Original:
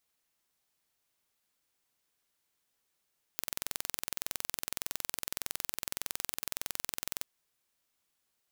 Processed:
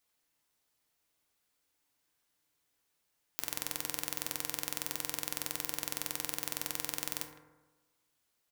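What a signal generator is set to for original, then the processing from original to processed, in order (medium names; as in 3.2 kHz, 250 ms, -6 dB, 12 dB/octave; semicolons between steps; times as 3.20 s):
pulse train 21.7 per s, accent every 0, -6.5 dBFS 3.86 s
speakerphone echo 160 ms, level -17 dB; FDN reverb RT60 1.2 s, low-frequency decay 1×, high-frequency decay 0.35×, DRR 4.5 dB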